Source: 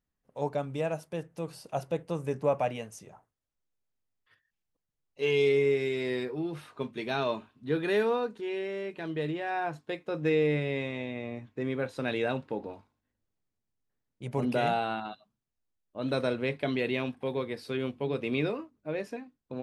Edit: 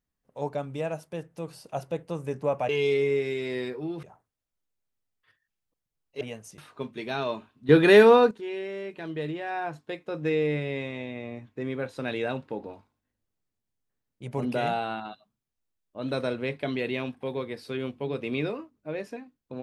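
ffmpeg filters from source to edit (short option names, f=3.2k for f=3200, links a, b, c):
-filter_complex "[0:a]asplit=7[a][b][c][d][e][f][g];[a]atrim=end=2.692[h];[b]atrim=start=5.238:end=6.582[i];[c]atrim=start=3.058:end=5.242[j];[d]atrim=start=2.688:end=3.062[k];[e]atrim=start=6.578:end=7.692[l];[f]atrim=start=7.688:end=8.312,asetpts=PTS-STARTPTS,volume=12dB[m];[g]atrim=start=8.308[n];[h][i]acrossfade=d=0.004:c1=hsin:c2=hsin[o];[o][j]acrossfade=d=0.004:c1=hsin:c2=hsin[p];[p][k]acrossfade=d=0.004:c1=hsin:c2=hsin[q];[q][l]acrossfade=d=0.004:c1=hsin:c2=hsin[r];[r][m]acrossfade=d=0.004:c1=hsin:c2=hsin[s];[s][n]acrossfade=d=0.004:c1=hsin:c2=hsin"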